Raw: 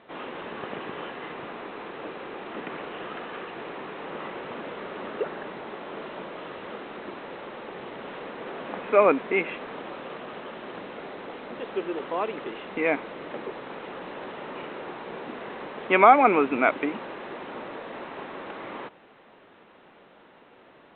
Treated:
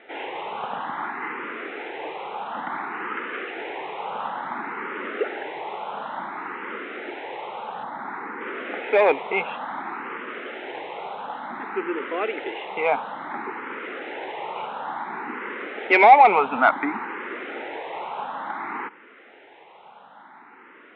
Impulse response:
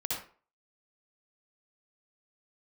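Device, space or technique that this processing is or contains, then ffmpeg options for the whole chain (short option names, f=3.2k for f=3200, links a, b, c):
barber-pole phaser into a guitar amplifier: -filter_complex "[0:a]highpass=f=190:p=1,asettb=1/sr,asplit=3[a][b][c];[a]atrim=end=7.834[d];[b]atrim=start=7.83:end=8.41,asetpts=PTS-STARTPTS,afade=t=in:d=0.004:c=qsin,afade=t=out:st=0.576:d=0.004:c=qsin,equalizer=f=2.9k:t=o:w=0.48:g=-13[e];[c]atrim=start=8.406[f];[d][e]acrossfade=d=0.004:c1=hsin:c2=qsin[g];[g][f]acrossfade=d=0.004:c1=qsin:c2=hsin,asplit=2[h][i];[i]afreqshift=0.57[j];[h][j]amix=inputs=2:normalize=1,asoftclip=type=tanh:threshold=-16dB,highpass=99,equalizer=f=100:t=q:w=4:g=-9,equalizer=f=170:t=q:w=4:g=-5,equalizer=f=580:t=q:w=4:g=-4,equalizer=f=850:t=q:w=4:g=9,equalizer=f=1.4k:t=q:w=4:g=5,equalizer=f=2.1k:t=q:w=4:g=6,lowpass=f=3.8k:w=0.5412,lowpass=f=3.8k:w=1.3066,volume=6dB"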